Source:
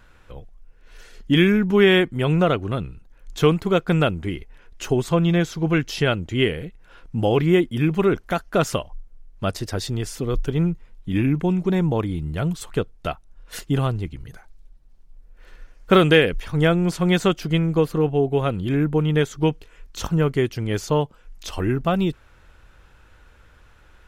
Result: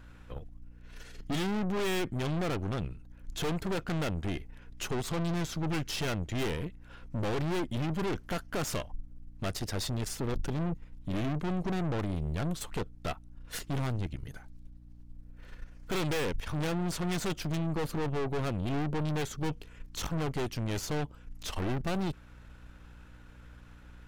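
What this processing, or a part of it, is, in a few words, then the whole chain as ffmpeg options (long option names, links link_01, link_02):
valve amplifier with mains hum: -af "aeval=exprs='(tanh(31.6*val(0)+0.7)-tanh(0.7))/31.6':channel_layout=same,aeval=exprs='val(0)+0.00251*(sin(2*PI*60*n/s)+sin(2*PI*2*60*n/s)/2+sin(2*PI*3*60*n/s)/3+sin(2*PI*4*60*n/s)/4+sin(2*PI*5*60*n/s)/5)':channel_layout=same"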